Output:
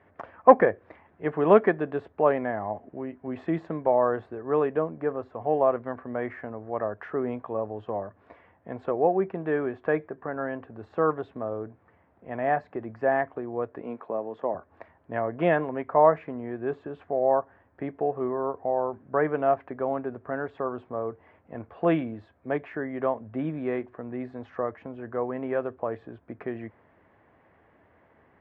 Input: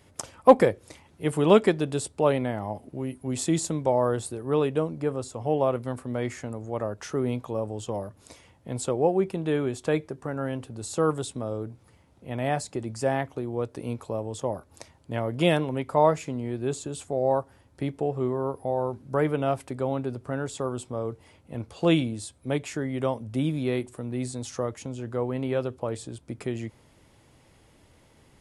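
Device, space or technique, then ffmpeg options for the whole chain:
bass cabinet: -filter_complex "[0:a]highpass=85,equalizer=f=130:t=q:w=4:g=-9,equalizer=f=430:t=q:w=4:g=3,equalizer=f=690:t=q:w=4:g=8,equalizer=f=1.1k:t=q:w=4:g=6,equalizer=f=1.7k:t=q:w=4:g=9,lowpass=f=2.2k:w=0.5412,lowpass=f=2.2k:w=1.3066,asettb=1/sr,asplit=3[a][b][c];[a]atrim=end=13.824[d];[b]atrim=start=13.82:end=14.55,asetpts=PTS-STARTPTS,afade=t=in:d=0.004:c=qsin,afade=t=out:st=0.726:d=0.004:c=qsin,highpass=f=160:w=0.5412,highpass=f=160:w=1.3066[e];[c]atrim=start=14.546[f];[d][e]acrossfade=d=0.004:c1=hsin:c2=qsin[g];[g][f]acrossfade=d=0.004:c1=qsin:c2=hsin,volume=-3dB"

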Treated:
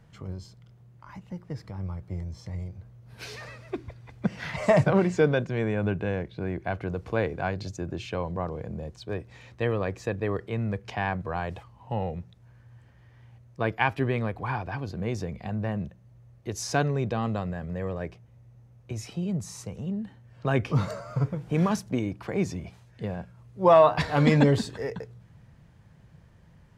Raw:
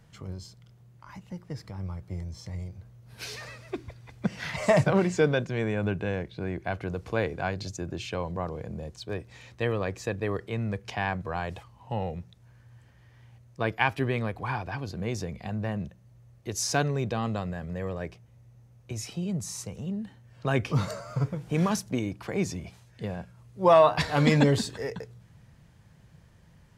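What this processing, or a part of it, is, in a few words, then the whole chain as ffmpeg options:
behind a face mask: -af "highshelf=f=3.3k:g=-8,volume=1.5dB"

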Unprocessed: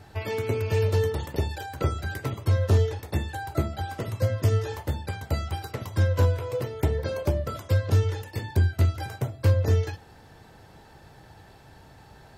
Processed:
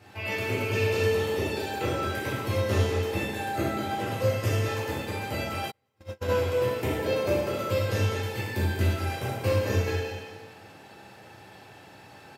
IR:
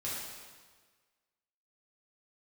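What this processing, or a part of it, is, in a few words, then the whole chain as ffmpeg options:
PA in a hall: -filter_complex "[0:a]highpass=190,equalizer=f=2.6k:t=o:w=0.49:g=7,aecho=1:1:195:0.316[a];[1:a]atrim=start_sample=2205[b];[a][b]afir=irnorm=-1:irlink=0,asplit=3[c][d][e];[c]afade=t=out:st=5.7:d=0.02[f];[d]agate=range=-42dB:threshold=-22dB:ratio=16:detection=peak,afade=t=in:st=5.7:d=0.02,afade=t=out:st=6.29:d=0.02[g];[e]afade=t=in:st=6.29:d=0.02[h];[f][g][h]amix=inputs=3:normalize=0"

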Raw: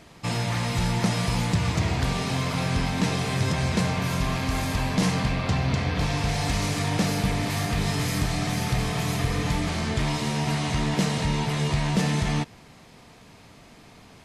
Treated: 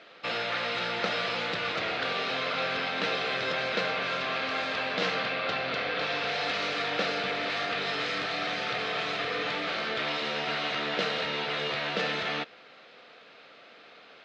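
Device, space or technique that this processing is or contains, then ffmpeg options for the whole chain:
phone earpiece: -af "highpass=500,equalizer=f=510:t=q:w=4:g=7,equalizer=f=950:t=q:w=4:g=-9,equalizer=f=1.4k:t=q:w=4:g=8,equalizer=f=2.7k:t=q:w=4:g=3,equalizer=f=3.8k:t=q:w=4:g=4,lowpass=f=4.2k:w=0.5412,lowpass=f=4.2k:w=1.3066"

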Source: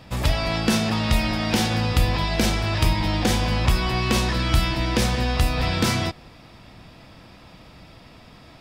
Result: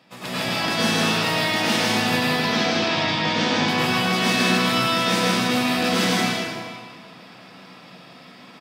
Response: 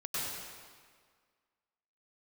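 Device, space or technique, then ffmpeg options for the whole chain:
stadium PA: -filter_complex "[0:a]asettb=1/sr,asplit=3[a][b][c];[a]atrim=end=2.154[d];[b]atrim=start=2.15:end=3.56,asetpts=PTS-STARTPTS,afade=t=in:d=0.004:c=qsin,afade=t=out:st=1.406:d=0.004:c=qsin,lowpass=f=5.8k:w=0.5412,lowpass=f=5.8k:w=1.3066[e];[c]atrim=start=3.556[f];[d][e]acrossfade=d=0.004:c1=hsin:c2=qsin[g];[g][f]acrossfade=d=0.004:c1=qsin:c2=hsin,highpass=f=170:w=0.5412,highpass=f=170:w=1.3066,equalizer=f=2.4k:t=o:w=2.1:g=3,aecho=1:1:157.4|271.1:0.891|0.282[h];[1:a]atrim=start_sample=2205[i];[h][i]afir=irnorm=-1:irlink=0,volume=-4.5dB"

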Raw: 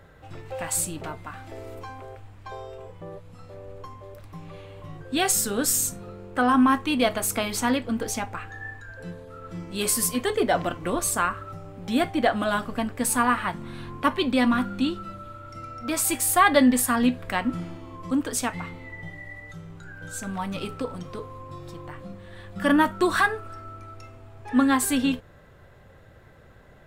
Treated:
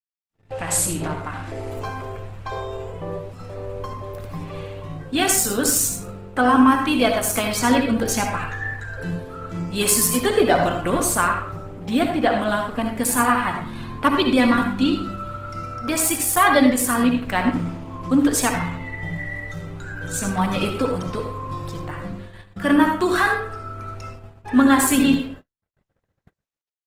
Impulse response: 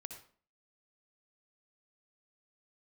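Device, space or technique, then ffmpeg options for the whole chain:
speakerphone in a meeting room: -filter_complex "[1:a]atrim=start_sample=2205[a];[0:a][a]afir=irnorm=-1:irlink=0,asplit=2[b][c];[c]adelay=150,highpass=300,lowpass=3.4k,asoftclip=type=hard:threshold=-18.5dB,volume=-28dB[d];[b][d]amix=inputs=2:normalize=0,dynaudnorm=f=110:g=9:m=16.5dB,agate=range=-60dB:threshold=-33dB:ratio=16:detection=peak,volume=-2.5dB" -ar 48000 -c:a libopus -b:a 16k

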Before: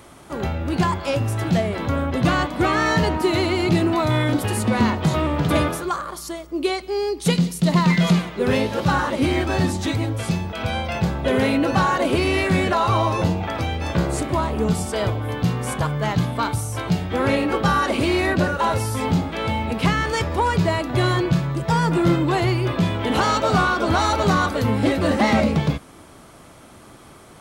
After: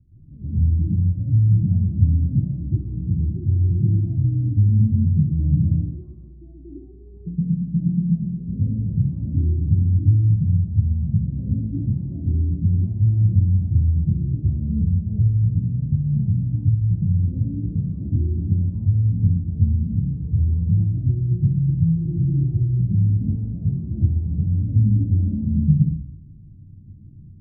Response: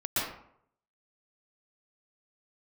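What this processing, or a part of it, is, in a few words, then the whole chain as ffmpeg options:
club heard from the street: -filter_complex "[0:a]alimiter=limit=-12dB:level=0:latency=1:release=216,lowpass=f=160:w=0.5412,lowpass=f=160:w=1.3066[a];[1:a]atrim=start_sample=2205[b];[a][b]afir=irnorm=-1:irlink=0"

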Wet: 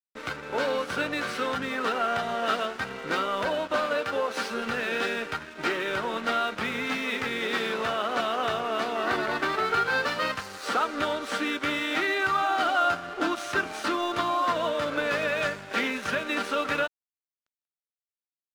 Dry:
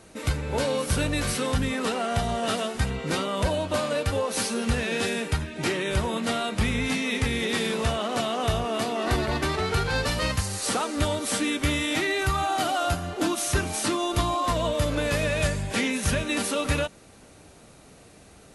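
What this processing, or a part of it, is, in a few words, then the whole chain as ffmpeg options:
pocket radio on a weak battery: -filter_complex "[0:a]highpass=290,lowpass=4k,aeval=exprs='sgn(val(0))*max(abs(val(0))-0.00668,0)':c=same,equalizer=f=1.4k:t=o:w=0.49:g=8.5,asettb=1/sr,asplit=3[a][b][c];[a]atrim=end=3.854[d];[b]atrim=start=3.85:end=4.52,asetpts=PTS-STARTPTS,afade=t=in:d=0.004:c=qsin,afade=t=out:st=0.666:d=0.004:c=qsin,highpass=100[e];[c]atrim=start=4.516[f];[d][e]acrossfade=d=0.004:c1=hsin:c2=qsin[g];[g][f]acrossfade=d=0.004:c1=qsin:c2=hsin"

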